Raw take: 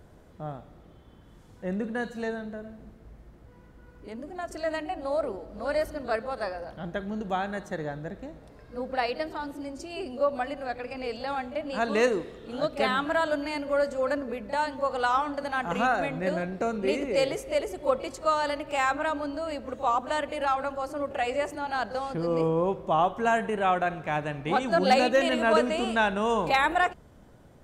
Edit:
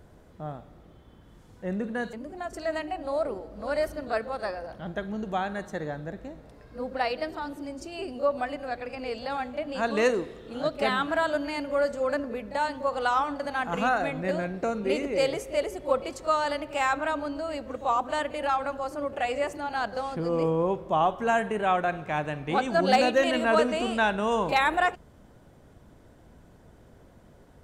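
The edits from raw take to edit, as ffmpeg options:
-filter_complex "[0:a]asplit=2[a][b];[a]atrim=end=2.132[c];[b]atrim=start=4.108[d];[c][d]acrossfade=d=0.004:c1=hsin:c2=hsin"

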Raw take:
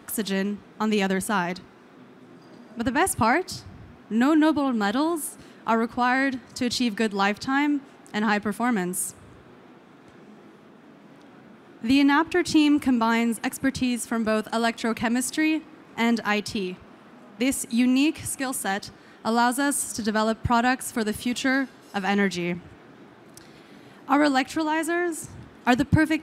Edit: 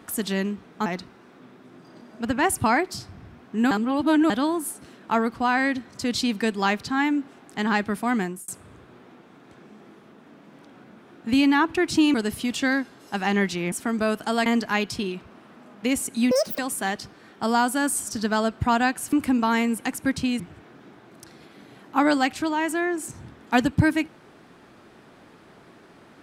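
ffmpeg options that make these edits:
-filter_complex "[0:a]asplit=12[a][b][c][d][e][f][g][h][i][j][k][l];[a]atrim=end=0.862[m];[b]atrim=start=1.428:end=4.282[n];[c]atrim=start=4.278:end=4.872,asetpts=PTS-STARTPTS,areverse[o];[d]atrim=start=4.868:end=9.05,asetpts=PTS-STARTPTS,afade=t=out:st=3.912:d=0.27[p];[e]atrim=start=9.05:end=12.712,asetpts=PTS-STARTPTS,afade=t=in:d=0.004:c=hsin[q];[f]atrim=start=20.958:end=22.542[r];[g]atrim=start=13.978:end=14.722[s];[h]atrim=start=16.018:end=17.874[t];[i]atrim=start=17.87:end=18.42,asetpts=PTS-STARTPTS,asetrate=87759,aresample=44100,atrim=end_sample=12188,asetpts=PTS-STARTPTS[u];[j]atrim=start=18.416:end=20.962[v];[k]atrim=start=12.708:end=13.982[w];[l]atrim=start=22.538[x];[m][n]acrossfade=d=0.004:c1=hsin:c2=hsin[y];[y][o]acrossfade=d=0.004:c1=hsin:c2=hsin[z];[p][q]concat=n=2:v=0:a=1[aa];[z][aa]acrossfade=d=0.004:c1=hsin:c2=hsin[ab];[ab][r]acrossfade=d=0.004:c1=hsin:c2=hsin[ac];[ac][s]acrossfade=d=0.004:c1=hsin:c2=hsin[ad];[ad][t]acrossfade=d=0.004:c1=hsin:c2=hsin[ae];[ae][u]acrossfade=d=0.004:c1=hsin:c2=hsin[af];[af][v]acrossfade=d=0.004:c1=hsin:c2=hsin[ag];[ag][w]acrossfade=d=0.004:c1=hsin:c2=hsin[ah];[ah][x]acrossfade=d=0.004:c1=hsin:c2=hsin"

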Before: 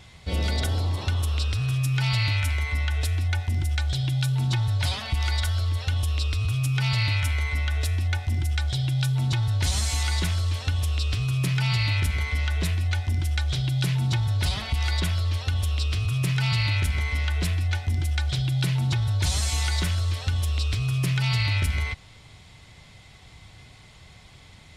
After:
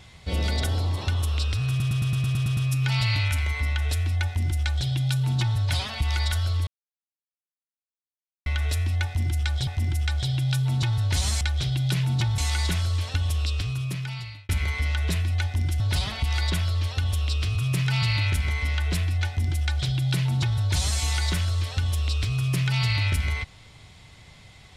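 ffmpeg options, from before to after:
-filter_complex "[0:a]asplit=16[a][b][c][d][e][f][g][h][i][j][k][l][m][n][o][p];[a]atrim=end=1.802[q];[b]atrim=start=1.688:end=1.802[r];[c]atrim=start=1.688:end=1.802[s];[d]atrim=start=1.688:end=1.802[t];[e]atrim=start=1.688:end=1.802[u];[f]atrim=start=1.688:end=1.802[v];[g]atrim=start=1.688:end=1.802[w];[h]atrim=start=1.688:end=1.802[x];[i]atrim=start=1.688:end=5.79,asetpts=PTS-STARTPTS,afade=t=out:st=4.098:d=0.004:c=hsin[y];[j]atrim=start=5.79:end=7.58,asetpts=PTS-STARTPTS,volume=0[z];[k]atrim=start=7.58:end=8.792,asetpts=PTS-STARTPTS,afade=t=in:d=0.004:c=hsin[aa];[l]atrim=start=8.168:end=9.912[ab];[m]atrim=start=13.328:end=14.302[ac];[n]atrim=start=9.908:end=12.02,asetpts=PTS-STARTPTS,afade=t=out:st=1.042:d=1.07[ad];[o]atrim=start=12.02:end=13.332,asetpts=PTS-STARTPTS,afade=t=in:d=0.004:c=hsin[ae];[p]atrim=start=14.298[af];[q][r]acrossfade=d=0.004:c1=hsin:c2=hsin[ag];[ag][s]acrossfade=d=0.004:c1=hsin:c2=hsin[ah];[ah][t]acrossfade=d=0.004:c1=hsin:c2=hsin[ai];[ai][u]acrossfade=d=0.004:c1=hsin:c2=hsin[aj];[aj][v]acrossfade=d=0.004:c1=hsin:c2=hsin[ak];[ak][w]acrossfade=d=0.004:c1=hsin:c2=hsin[al];[al][x]acrossfade=d=0.004:c1=hsin:c2=hsin[am];[y][z][aa]concat=n=3:v=0:a=1[an];[am][an]acrossfade=d=0.004:c1=hsin:c2=hsin[ao];[ao][ab]acrossfade=d=0.004:c1=hsin:c2=hsin[ap];[ap][ac]acrossfade=d=0.004:c1=hsin:c2=hsin[aq];[ad][ae]concat=n=2:v=0:a=1[ar];[aq][ar]acrossfade=d=0.004:c1=hsin:c2=hsin[as];[as][af]acrossfade=d=0.004:c1=hsin:c2=hsin"

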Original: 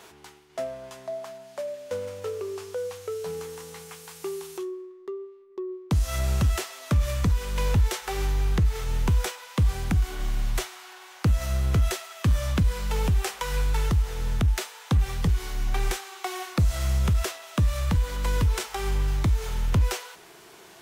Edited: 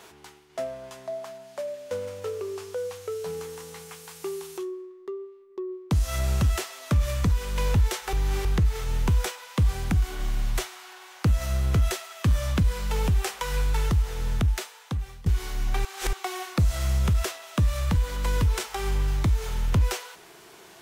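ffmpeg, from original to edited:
-filter_complex "[0:a]asplit=6[a][b][c][d][e][f];[a]atrim=end=8.132[g];[b]atrim=start=8.128:end=8.452,asetpts=PTS-STARTPTS,areverse[h];[c]atrim=start=8.448:end=15.26,asetpts=PTS-STARTPTS,afade=t=out:st=5.932:d=0.88:silence=0.0944061[i];[d]atrim=start=15.26:end=15.852,asetpts=PTS-STARTPTS,afade=t=in:d=0.004:c=hsin:silence=0.0944061[j];[e]atrim=start=15.848:end=16.132,asetpts=PTS-STARTPTS,areverse[k];[f]atrim=start=16.128[l];[g][h]acrossfade=d=0.004:c1=hsin:c2=hsin[m];[i][j]concat=n=2:v=0:a=1[n];[m][n]acrossfade=d=0.004:c1=hsin:c2=hsin[o];[o][k]acrossfade=d=0.004:c1=hsin:c2=hsin[p];[p][l]acrossfade=d=0.004:c1=hsin:c2=hsin"

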